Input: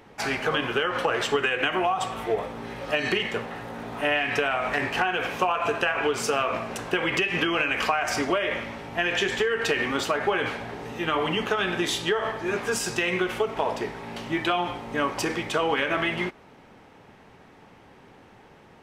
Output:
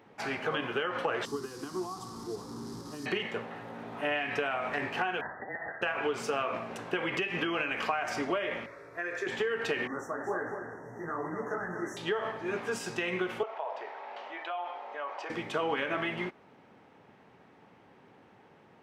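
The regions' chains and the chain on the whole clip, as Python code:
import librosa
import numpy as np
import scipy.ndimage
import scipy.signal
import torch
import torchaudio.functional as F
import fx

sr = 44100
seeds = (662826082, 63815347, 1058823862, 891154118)

y = fx.chain(x, sr, fx.delta_mod(bps=64000, step_db=-24.0),
    fx.curve_eq(hz=(370.0, 590.0, 1100.0, 1600.0, 2600.0, 5000.0, 7200.0), db=(0, -20, -5, -18, -26, 1, -4)), at=(1.25, 3.06))
y = fx.chain(y, sr, fx.brickwall_highpass(low_hz=1200.0),
    fx.freq_invert(carrier_hz=3200), at=(5.21, 5.82))
y = fx.chain(y, sr, fx.low_shelf(hz=150.0, db=-8.0),
    fx.fixed_phaser(hz=820.0, stages=6), at=(8.66, 9.27))
y = fx.chain(y, sr, fx.brickwall_bandstop(low_hz=2000.0, high_hz=5400.0),
    fx.echo_single(ms=242, db=-6.0),
    fx.detune_double(cents=59), at=(9.87, 11.97))
y = fx.chain(y, sr, fx.ladder_highpass(hz=540.0, resonance_pct=40),
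    fx.air_absorb(metres=140.0),
    fx.env_flatten(amount_pct=50), at=(13.43, 15.3))
y = scipy.signal.sosfilt(scipy.signal.butter(2, 110.0, 'highpass', fs=sr, output='sos'), y)
y = fx.peak_eq(y, sr, hz=13000.0, db=-8.5, octaves=2.2)
y = y * librosa.db_to_amplitude(-6.0)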